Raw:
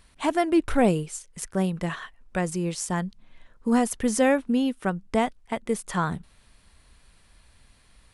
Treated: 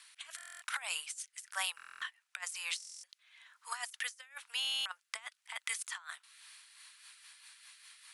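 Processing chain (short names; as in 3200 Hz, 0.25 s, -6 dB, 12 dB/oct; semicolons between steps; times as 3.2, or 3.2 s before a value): Bessel high-pass 1700 Hz, order 8; negative-ratio compressor -42 dBFS, ratio -0.5; rotary speaker horn 1 Hz, later 5 Hz, at 6.17; stuck buffer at 0.36/1.76/2.78/4.6, samples 1024, times 10; gain +4.5 dB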